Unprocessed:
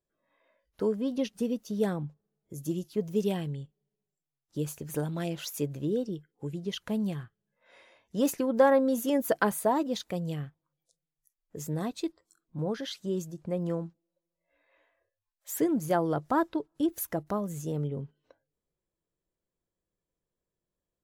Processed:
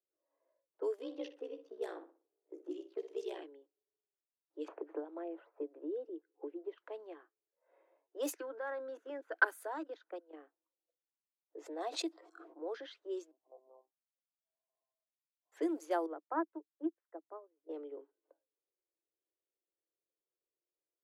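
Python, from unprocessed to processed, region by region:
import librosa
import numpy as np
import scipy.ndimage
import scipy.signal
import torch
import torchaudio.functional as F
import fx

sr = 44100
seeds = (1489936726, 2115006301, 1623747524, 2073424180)

y = fx.chain(x, sr, fx.ring_mod(carrier_hz=31.0),
    fx.room_flutter(wall_m=10.4, rt60_s=0.33),
    fx.band_squash(depth_pct=70), at=(0.98, 3.43))
y = fx.chain(y, sr, fx.lowpass(hz=1000.0, slope=12),
    fx.band_squash(depth_pct=100), at=(4.68, 6.78))
y = fx.chain(y, sr, fx.peak_eq(hz=1500.0, db=14.0, octaves=0.37),
    fx.level_steps(step_db=16), at=(8.34, 10.33))
y = fx.chain(y, sr, fx.peak_eq(hz=710.0, db=8.5, octaves=0.42),
    fx.pre_swell(db_per_s=44.0), at=(11.56, 12.58))
y = fx.chain(y, sr, fx.formant_cascade(vowel='a'),
    fx.air_absorb(metres=450.0),
    fx.lpc_monotone(seeds[0], pitch_hz=130.0, order=10), at=(13.31, 15.52))
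y = fx.chain(y, sr, fx.lowpass(hz=2000.0, slope=24),
    fx.upward_expand(threshold_db=-42.0, expansion=2.5), at=(16.06, 17.69))
y = scipy.signal.sosfilt(scipy.signal.butter(16, 300.0, 'highpass', fs=sr, output='sos'), y)
y = fx.env_lowpass(y, sr, base_hz=720.0, full_db=-25.5)
y = F.gain(torch.from_numpy(y), -7.0).numpy()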